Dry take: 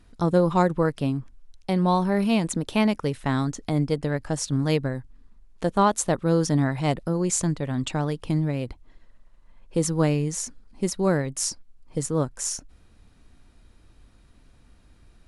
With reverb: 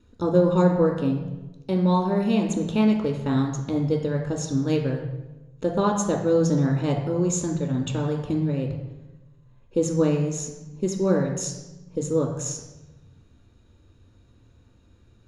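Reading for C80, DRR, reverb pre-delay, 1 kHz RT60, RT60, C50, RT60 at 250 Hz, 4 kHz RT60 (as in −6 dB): 8.0 dB, 2.0 dB, 3 ms, 1.0 s, 1.1 s, 5.5 dB, 1.7 s, 0.80 s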